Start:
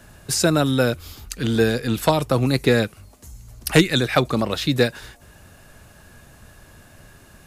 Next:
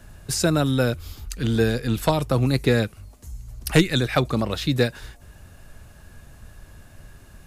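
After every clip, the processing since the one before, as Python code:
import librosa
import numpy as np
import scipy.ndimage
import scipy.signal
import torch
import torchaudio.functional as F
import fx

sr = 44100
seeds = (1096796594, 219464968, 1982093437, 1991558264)

y = fx.low_shelf(x, sr, hz=90.0, db=12.0)
y = F.gain(torch.from_numpy(y), -3.5).numpy()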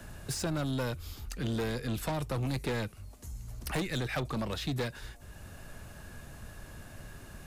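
y = 10.0 ** (-21.5 / 20.0) * np.tanh(x / 10.0 ** (-21.5 / 20.0))
y = fx.band_squash(y, sr, depth_pct=40)
y = F.gain(torch.from_numpy(y), -6.5).numpy()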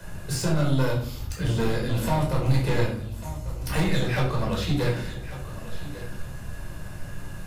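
y = x + 10.0 ** (-14.5 / 20.0) * np.pad(x, (int(1145 * sr / 1000.0), 0))[:len(x)]
y = fx.room_shoebox(y, sr, seeds[0], volume_m3=740.0, walls='furnished', distance_m=5.0)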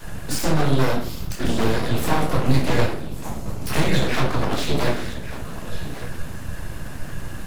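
y = np.abs(x)
y = F.gain(torch.from_numpy(y), 6.0).numpy()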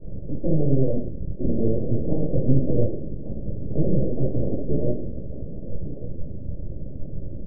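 y = fx.rattle_buzz(x, sr, strikes_db=-31.0, level_db=-19.0)
y = scipy.signal.sosfilt(scipy.signal.cheby1(5, 1.0, 580.0, 'lowpass', fs=sr, output='sos'), y)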